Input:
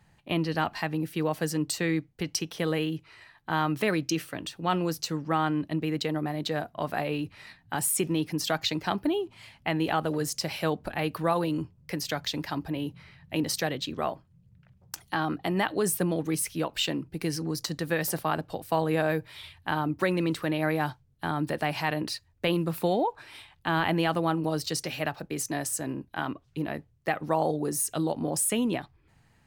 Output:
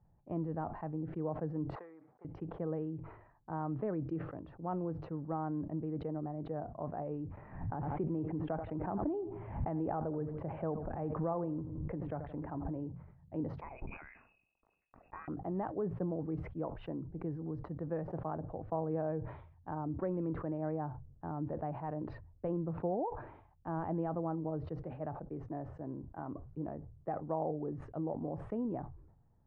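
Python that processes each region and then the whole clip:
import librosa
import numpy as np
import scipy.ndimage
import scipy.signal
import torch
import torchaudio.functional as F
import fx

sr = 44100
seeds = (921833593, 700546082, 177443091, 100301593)

y = fx.chain(x, sr, fx.median_filter(points=15),
    fx.highpass(hz=1000.0, slope=12), at=(1.75, 2.25))
y = fx.chain(y, sr, fx.lowpass(hz=3000.0, slope=24),
    fx.echo_feedback(ms=85, feedback_pct=35, wet_db=-18.5),
    fx.pre_swell(db_per_s=24.0), at=(7.37, 12.89))
y = fx.chain(y, sr, fx.freq_invert(carrier_hz=2700),
    fx.sustainer(db_per_s=47.0), at=(13.61, 15.28))
y = scipy.signal.sosfilt(scipy.signal.bessel(4, 580.0, 'lowpass', norm='mag', fs=sr, output='sos'), y)
y = fx.peak_eq(y, sr, hz=240.0, db=-7.5, octaves=2.9)
y = fx.sustainer(y, sr, db_per_s=71.0)
y = y * 10.0 ** (-1.5 / 20.0)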